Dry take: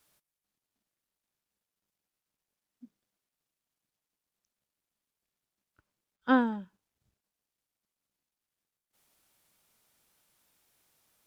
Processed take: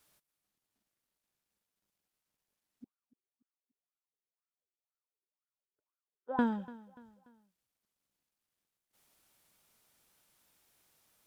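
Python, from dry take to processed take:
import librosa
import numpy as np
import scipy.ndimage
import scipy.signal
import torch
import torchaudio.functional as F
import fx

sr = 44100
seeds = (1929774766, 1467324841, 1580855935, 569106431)

y = fx.wah_lfo(x, sr, hz=2.0, low_hz=360.0, high_hz=1400.0, q=11.0, at=(2.84, 6.39))
y = fx.echo_feedback(y, sr, ms=291, feedback_pct=42, wet_db=-19.5)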